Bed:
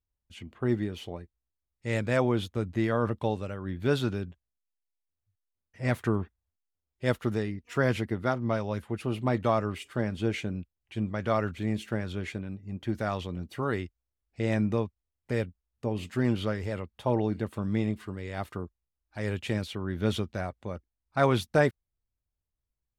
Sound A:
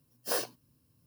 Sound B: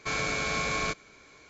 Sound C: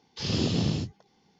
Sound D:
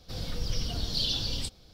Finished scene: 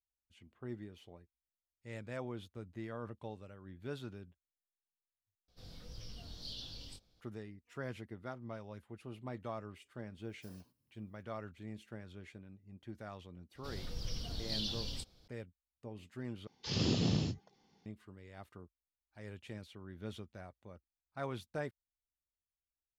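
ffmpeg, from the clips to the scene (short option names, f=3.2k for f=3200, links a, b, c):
-filter_complex "[4:a]asplit=2[a][b];[0:a]volume=-17dB[c];[a]flanger=delay=17.5:depth=7.5:speed=1.8[d];[1:a]acompressor=threshold=-42dB:ratio=16:attack=1.6:release=168:knee=1:detection=peak[e];[c]asplit=3[f][g][h];[f]atrim=end=5.484[i];[d]atrim=end=1.73,asetpts=PTS-STARTPTS,volume=-14dB[j];[g]atrim=start=7.206:end=16.474[k];[3:a]atrim=end=1.39,asetpts=PTS-STARTPTS,volume=-5.5dB[l];[h]atrim=start=17.856[m];[e]atrim=end=1.06,asetpts=PTS-STARTPTS,volume=-14dB,afade=t=in:d=0.004:c=hsin,afade=t=out:st=1.056:d=0.004:c=hsin,adelay=10170[n];[b]atrim=end=1.73,asetpts=PTS-STARTPTS,volume=-9.5dB,afade=t=in:d=0.004:c=hsin,afade=t=out:st=1.726:d=0.004:c=hsin,adelay=13550[o];[i][j]acrossfade=d=0.004:c1=hsin:c2=hsin[p];[p][k]acrossfade=d=0.004:c1=hsin:c2=hsin[q];[q][l]acrossfade=d=0.004:c1=hsin:c2=hsin[r];[r][m]acrossfade=d=0.004:c1=hsin:c2=hsin[s];[s][n][o]amix=inputs=3:normalize=0"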